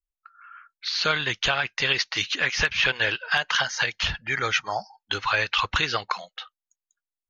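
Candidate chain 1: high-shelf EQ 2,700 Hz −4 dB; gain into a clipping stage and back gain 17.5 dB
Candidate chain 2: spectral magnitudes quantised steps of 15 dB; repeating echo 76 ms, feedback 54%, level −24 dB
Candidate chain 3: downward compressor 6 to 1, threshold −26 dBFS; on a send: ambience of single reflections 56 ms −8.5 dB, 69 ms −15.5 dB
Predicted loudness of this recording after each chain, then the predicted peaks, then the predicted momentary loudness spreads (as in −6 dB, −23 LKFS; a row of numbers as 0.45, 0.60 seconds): −26.5, −24.5, −29.0 LKFS; −17.5, −8.5, −12.5 dBFS; 9, 10, 8 LU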